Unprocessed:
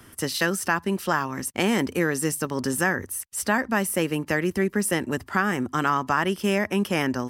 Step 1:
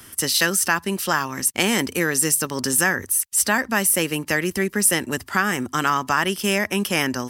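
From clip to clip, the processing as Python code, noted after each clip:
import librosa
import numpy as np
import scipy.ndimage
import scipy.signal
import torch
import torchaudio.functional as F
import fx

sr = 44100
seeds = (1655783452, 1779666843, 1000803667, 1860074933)

y = fx.high_shelf(x, sr, hz=2300.0, db=11.5)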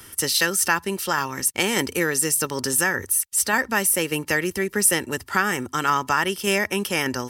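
y = x + 0.3 * np.pad(x, (int(2.2 * sr / 1000.0), 0))[:len(x)]
y = fx.tremolo_shape(y, sr, shape='saw_down', hz=1.7, depth_pct=30)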